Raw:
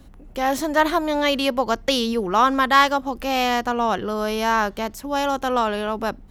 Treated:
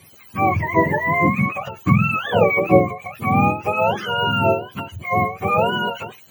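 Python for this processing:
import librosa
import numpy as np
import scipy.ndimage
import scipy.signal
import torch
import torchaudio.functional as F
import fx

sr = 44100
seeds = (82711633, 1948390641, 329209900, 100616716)

y = fx.octave_mirror(x, sr, pivot_hz=780.0)
y = fx.end_taper(y, sr, db_per_s=140.0)
y = y * librosa.db_to_amplitude(4.5)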